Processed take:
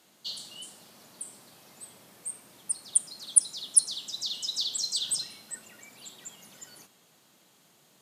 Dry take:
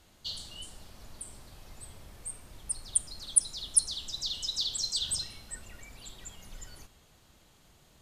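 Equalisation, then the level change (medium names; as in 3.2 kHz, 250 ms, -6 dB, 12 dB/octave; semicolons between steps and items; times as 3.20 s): high-pass 160 Hz 24 dB/octave; treble shelf 8 kHz +6 dB; 0.0 dB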